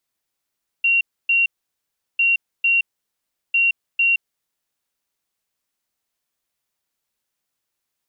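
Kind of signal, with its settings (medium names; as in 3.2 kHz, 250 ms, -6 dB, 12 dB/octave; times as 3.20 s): beep pattern sine 2.75 kHz, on 0.17 s, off 0.28 s, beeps 2, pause 0.73 s, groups 3, -13.5 dBFS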